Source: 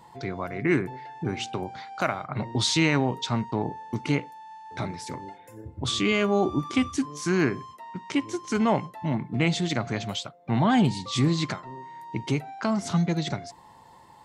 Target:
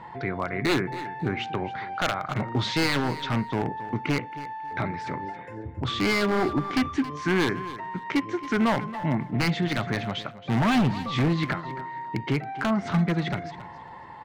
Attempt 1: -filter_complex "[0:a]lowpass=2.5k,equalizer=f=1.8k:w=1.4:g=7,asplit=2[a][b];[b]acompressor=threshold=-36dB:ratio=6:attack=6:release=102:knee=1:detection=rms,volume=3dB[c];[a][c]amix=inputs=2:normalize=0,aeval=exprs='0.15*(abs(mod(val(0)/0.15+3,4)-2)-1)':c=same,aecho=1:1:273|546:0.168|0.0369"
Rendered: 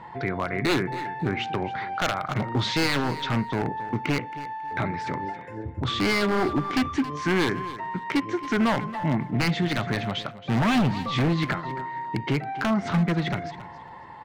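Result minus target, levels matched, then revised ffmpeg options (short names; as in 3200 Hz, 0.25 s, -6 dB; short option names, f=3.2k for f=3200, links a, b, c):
compressor: peak gain reduction -6 dB
-filter_complex "[0:a]lowpass=2.5k,equalizer=f=1.8k:w=1.4:g=7,asplit=2[a][b];[b]acompressor=threshold=-43.5dB:ratio=6:attack=6:release=102:knee=1:detection=rms,volume=3dB[c];[a][c]amix=inputs=2:normalize=0,aeval=exprs='0.15*(abs(mod(val(0)/0.15+3,4)-2)-1)':c=same,aecho=1:1:273|546:0.168|0.0369"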